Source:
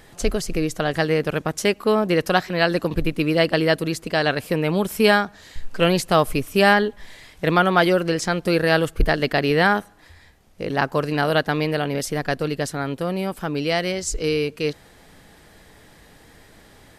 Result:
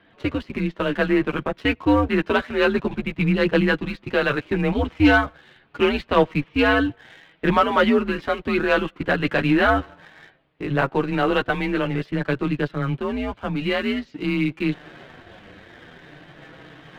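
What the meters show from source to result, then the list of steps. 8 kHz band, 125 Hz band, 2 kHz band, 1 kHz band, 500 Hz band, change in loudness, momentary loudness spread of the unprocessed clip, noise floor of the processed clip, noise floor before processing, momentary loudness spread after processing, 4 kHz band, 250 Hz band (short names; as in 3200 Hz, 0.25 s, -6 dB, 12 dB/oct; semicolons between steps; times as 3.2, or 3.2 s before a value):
under -15 dB, -1.0 dB, -0.5 dB, -1.5 dB, -2.0 dB, -0.5 dB, 8 LU, -56 dBFS, -50 dBFS, 8 LU, -4.0 dB, +2.0 dB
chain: reverse; upward compressor, threshold -30 dBFS; reverse; mistuned SSB -130 Hz 220–3600 Hz; chorus voices 4, 0.25 Hz, delay 10 ms, depth 3.8 ms; sample leveller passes 1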